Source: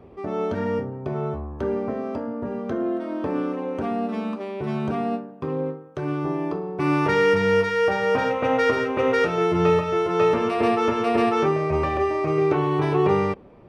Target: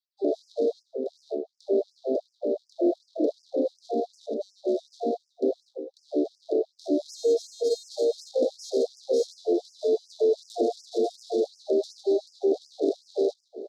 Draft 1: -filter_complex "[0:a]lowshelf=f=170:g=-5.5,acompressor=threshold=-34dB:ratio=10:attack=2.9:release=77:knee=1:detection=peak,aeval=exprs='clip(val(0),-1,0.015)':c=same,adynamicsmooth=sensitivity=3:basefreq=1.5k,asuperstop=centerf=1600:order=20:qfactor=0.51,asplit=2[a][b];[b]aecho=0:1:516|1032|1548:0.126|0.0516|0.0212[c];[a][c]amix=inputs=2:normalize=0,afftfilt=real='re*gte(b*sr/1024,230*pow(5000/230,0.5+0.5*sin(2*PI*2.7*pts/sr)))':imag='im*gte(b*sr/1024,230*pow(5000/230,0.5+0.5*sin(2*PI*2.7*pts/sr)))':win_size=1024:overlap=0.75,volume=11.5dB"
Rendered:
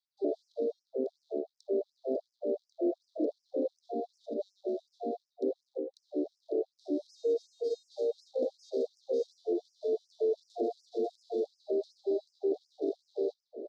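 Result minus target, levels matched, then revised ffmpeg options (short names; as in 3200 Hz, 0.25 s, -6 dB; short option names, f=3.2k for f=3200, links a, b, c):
compressor: peak gain reduction +9.5 dB
-filter_complex "[0:a]lowshelf=f=170:g=-5.5,acompressor=threshold=-23.5dB:ratio=10:attack=2.9:release=77:knee=1:detection=peak,aeval=exprs='clip(val(0),-1,0.015)':c=same,adynamicsmooth=sensitivity=3:basefreq=1.5k,asuperstop=centerf=1600:order=20:qfactor=0.51,asplit=2[a][b];[b]aecho=0:1:516|1032|1548:0.126|0.0516|0.0212[c];[a][c]amix=inputs=2:normalize=0,afftfilt=real='re*gte(b*sr/1024,230*pow(5000/230,0.5+0.5*sin(2*PI*2.7*pts/sr)))':imag='im*gte(b*sr/1024,230*pow(5000/230,0.5+0.5*sin(2*PI*2.7*pts/sr)))':win_size=1024:overlap=0.75,volume=11.5dB"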